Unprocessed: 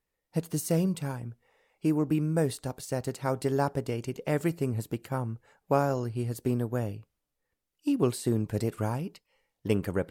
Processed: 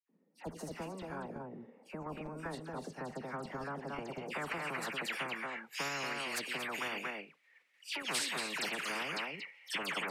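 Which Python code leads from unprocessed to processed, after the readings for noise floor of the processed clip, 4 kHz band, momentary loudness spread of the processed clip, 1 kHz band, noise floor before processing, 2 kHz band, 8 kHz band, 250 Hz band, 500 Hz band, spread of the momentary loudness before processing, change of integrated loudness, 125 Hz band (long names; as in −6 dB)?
−72 dBFS, +7.0 dB, 10 LU, −4.5 dB, −84 dBFS, +6.0 dB, −3.0 dB, −16.0 dB, −13.0 dB, 9 LU, −8.5 dB, −20.0 dB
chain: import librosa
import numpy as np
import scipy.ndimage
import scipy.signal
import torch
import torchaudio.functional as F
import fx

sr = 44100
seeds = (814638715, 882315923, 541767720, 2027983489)

p1 = scipy.signal.sosfilt(scipy.signal.butter(12, 150.0, 'highpass', fs=sr, output='sos'), x)
p2 = fx.dispersion(p1, sr, late='lows', ms=92.0, hz=2300.0)
p3 = p2 + fx.echo_single(p2, sr, ms=231, db=-10.0, dry=0)
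p4 = fx.filter_sweep_bandpass(p3, sr, from_hz=230.0, to_hz=2200.0, start_s=3.86, end_s=5.11, q=4.0)
p5 = fx.level_steps(p4, sr, step_db=9)
p6 = p4 + (p5 * 10.0 ** (-1.5 / 20.0))
p7 = fx.spectral_comp(p6, sr, ratio=10.0)
y = p7 * 10.0 ** (-1.0 / 20.0)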